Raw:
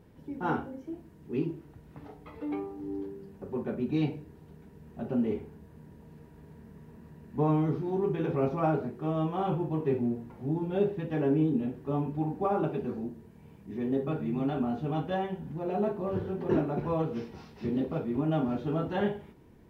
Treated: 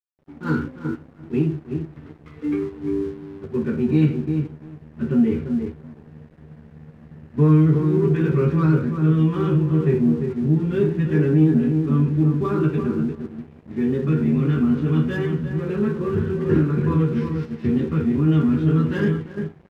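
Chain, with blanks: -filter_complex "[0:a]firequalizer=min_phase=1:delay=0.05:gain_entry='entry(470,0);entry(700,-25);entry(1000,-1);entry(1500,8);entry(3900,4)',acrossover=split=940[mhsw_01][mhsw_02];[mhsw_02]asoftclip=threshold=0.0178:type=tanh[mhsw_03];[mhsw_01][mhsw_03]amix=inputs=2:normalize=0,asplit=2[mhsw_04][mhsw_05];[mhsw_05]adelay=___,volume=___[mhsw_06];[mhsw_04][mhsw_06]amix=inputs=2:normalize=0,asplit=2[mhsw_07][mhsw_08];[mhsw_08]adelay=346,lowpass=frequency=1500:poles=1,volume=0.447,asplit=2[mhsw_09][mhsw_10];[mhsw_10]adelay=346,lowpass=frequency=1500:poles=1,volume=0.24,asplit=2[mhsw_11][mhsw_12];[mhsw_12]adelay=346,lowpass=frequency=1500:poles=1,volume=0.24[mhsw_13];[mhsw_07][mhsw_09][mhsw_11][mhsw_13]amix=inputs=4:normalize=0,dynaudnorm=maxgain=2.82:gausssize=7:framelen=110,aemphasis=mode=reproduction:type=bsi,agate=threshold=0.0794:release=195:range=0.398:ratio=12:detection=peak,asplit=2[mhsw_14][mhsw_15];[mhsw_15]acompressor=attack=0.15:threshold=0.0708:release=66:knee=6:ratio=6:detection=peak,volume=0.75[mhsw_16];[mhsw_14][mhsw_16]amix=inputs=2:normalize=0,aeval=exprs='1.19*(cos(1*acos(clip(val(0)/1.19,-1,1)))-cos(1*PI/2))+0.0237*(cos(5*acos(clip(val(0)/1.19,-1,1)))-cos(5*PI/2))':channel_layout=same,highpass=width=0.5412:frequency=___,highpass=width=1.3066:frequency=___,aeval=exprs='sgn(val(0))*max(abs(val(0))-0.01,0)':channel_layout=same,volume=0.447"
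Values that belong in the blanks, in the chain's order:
13, 0.631, 85, 85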